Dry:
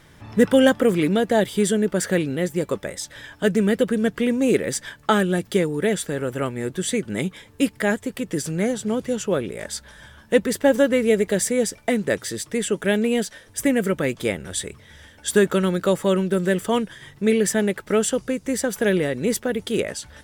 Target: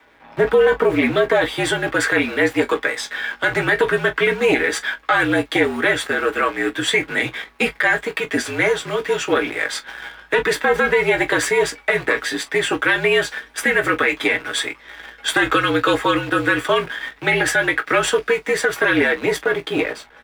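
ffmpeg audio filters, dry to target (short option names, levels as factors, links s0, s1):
-filter_complex "[0:a]bandreject=f=3000:w=7.9,aeval=exprs='(tanh(2.51*val(0)+0.75)-tanh(0.75))/2.51':c=same,lowshelf=f=330:g=-7.5,aecho=1:1:5.9:0.64,acrossover=split=120|1400[s0][s1][s2];[s2]dynaudnorm=f=390:g=7:m=4.22[s3];[s0][s1][s3]amix=inputs=3:normalize=0,acrusher=bits=7:dc=4:mix=0:aa=0.000001,afreqshift=-55,acrossover=split=220 3100:gain=0.141 1 0.0794[s4][s5][s6];[s4][s5][s6]amix=inputs=3:normalize=0,asplit=2[s7][s8];[s8]aecho=0:1:17|42:0.422|0.126[s9];[s7][s9]amix=inputs=2:normalize=0,alimiter=level_in=6.31:limit=0.891:release=50:level=0:latency=1,volume=0.501"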